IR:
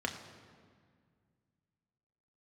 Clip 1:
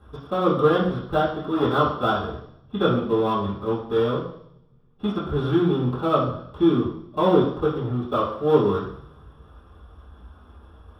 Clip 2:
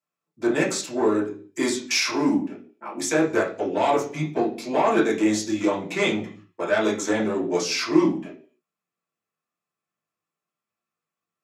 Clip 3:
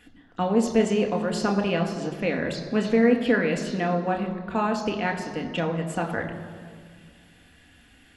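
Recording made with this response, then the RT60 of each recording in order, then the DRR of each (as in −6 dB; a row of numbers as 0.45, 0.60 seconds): 3; 0.70, 0.45, 1.9 seconds; −11.0, −6.0, 2.5 decibels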